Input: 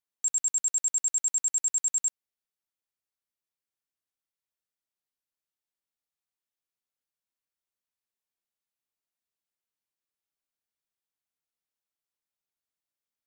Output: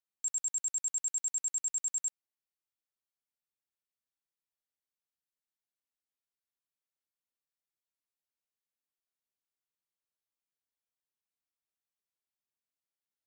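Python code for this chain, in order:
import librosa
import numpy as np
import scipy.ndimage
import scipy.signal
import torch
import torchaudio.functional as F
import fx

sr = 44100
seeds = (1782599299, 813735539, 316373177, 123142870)

y = fx.low_shelf(x, sr, hz=230.0, db=-9.0, at=(0.42, 0.85))
y = y * librosa.db_to_amplitude(-6.5)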